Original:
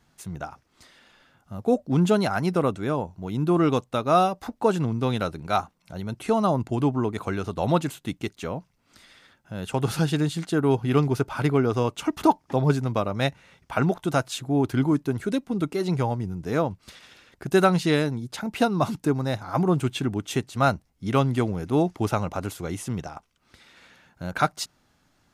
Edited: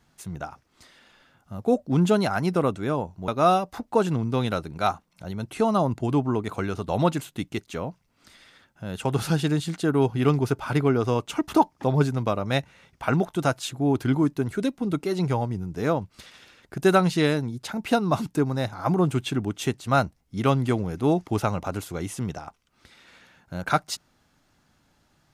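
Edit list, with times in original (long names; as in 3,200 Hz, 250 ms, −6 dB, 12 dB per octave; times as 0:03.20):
0:03.28–0:03.97: remove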